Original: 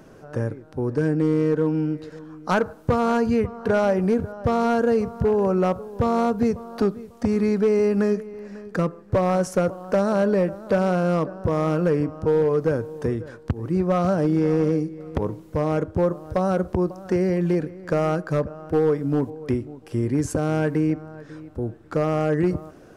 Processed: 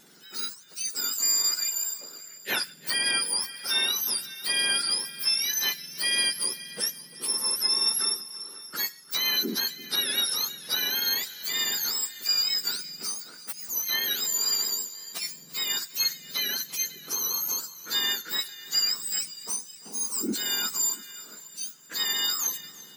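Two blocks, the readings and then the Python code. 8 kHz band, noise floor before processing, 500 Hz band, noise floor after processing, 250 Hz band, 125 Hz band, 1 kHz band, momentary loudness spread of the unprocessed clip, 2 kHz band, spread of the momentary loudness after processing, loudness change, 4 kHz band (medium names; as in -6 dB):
no reading, -47 dBFS, -25.5 dB, -48 dBFS, -21.5 dB, under -30 dB, -14.5 dB, 9 LU, +2.0 dB, 10 LU, -3.0 dB, +21.5 dB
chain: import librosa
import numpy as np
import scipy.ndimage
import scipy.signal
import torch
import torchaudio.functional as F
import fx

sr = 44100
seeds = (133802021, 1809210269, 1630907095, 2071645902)

p1 = fx.octave_mirror(x, sr, pivot_hz=1500.0)
p2 = p1 + fx.echo_feedback(p1, sr, ms=343, feedback_pct=56, wet_db=-19.5, dry=0)
y = p2 * 10.0 ** (-1.5 / 20.0)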